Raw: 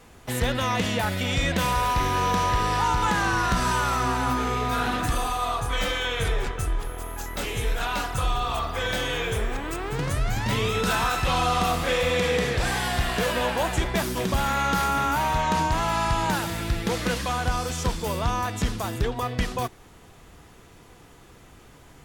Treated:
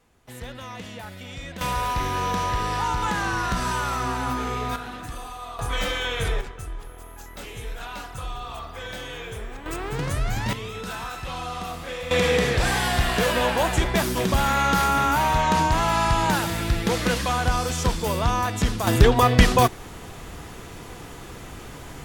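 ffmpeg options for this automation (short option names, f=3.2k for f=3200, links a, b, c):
-af "asetnsamples=n=441:p=0,asendcmd='1.61 volume volume -2dB;4.76 volume volume -10dB;5.59 volume volume 0dB;6.41 volume volume -8dB;9.66 volume volume 0dB;10.53 volume volume -9dB;12.11 volume volume 3dB;18.87 volume volume 11dB',volume=-12.5dB"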